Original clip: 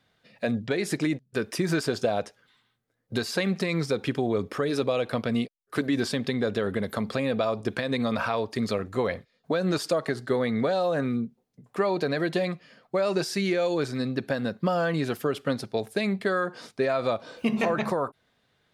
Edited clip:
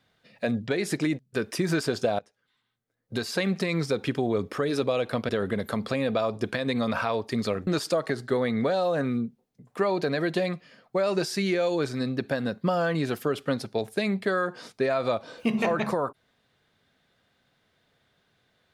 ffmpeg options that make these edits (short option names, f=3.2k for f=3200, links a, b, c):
-filter_complex "[0:a]asplit=4[a][b][c][d];[a]atrim=end=2.19,asetpts=PTS-STARTPTS,afade=t=out:st=2.186:d=0.004:c=hsin:silence=0.0841395[e];[b]atrim=start=2.19:end=5.292,asetpts=PTS-STARTPTS,afade=t=in:d=1.25:silence=0.0841395[f];[c]atrim=start=6.528:end=8.912[g];[d]atrim=start=9.658[h];[e][f]concat=n=2:v=0:a=1[i];[i][g]acrossfade=d=0.004:c1=hsin:c2=hsin[j];[j][h]acrossfade=d=0.004:c1=hsin:c2=hsin"